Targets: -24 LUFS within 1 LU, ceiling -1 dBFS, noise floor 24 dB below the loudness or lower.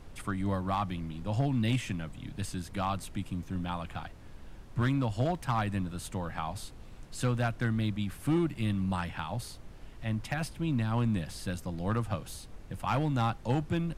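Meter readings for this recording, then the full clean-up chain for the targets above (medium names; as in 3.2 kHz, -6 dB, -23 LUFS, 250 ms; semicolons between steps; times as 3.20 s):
clipped samples 0.7%; clipping level -21.5 dBFS; noise floor -48 dBFS; noise floor target -57 dBFS; loudness -33.0 LUFS; peak level -21.5 dBFS; loudness target -24.0 LUFS
-> clip repair -21.5 dBFS; noise print and reduce 9 dB; trim +9 dB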